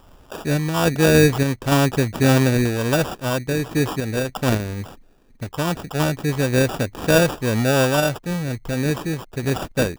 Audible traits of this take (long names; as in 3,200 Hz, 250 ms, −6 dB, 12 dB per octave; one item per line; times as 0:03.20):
sample-and-hold tremolo
aliases and images of a low sample rate 2,100 Hz, jitter 0%